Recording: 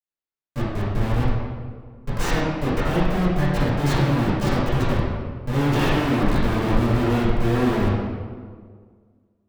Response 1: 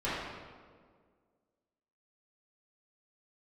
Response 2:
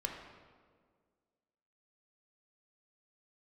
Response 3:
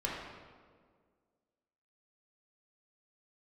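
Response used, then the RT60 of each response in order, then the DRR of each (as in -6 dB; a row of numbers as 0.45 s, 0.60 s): 1; 1.8 s, 1.8 s, 1.8 s; -12.5 dB, 1.0 dB, -5.0 dB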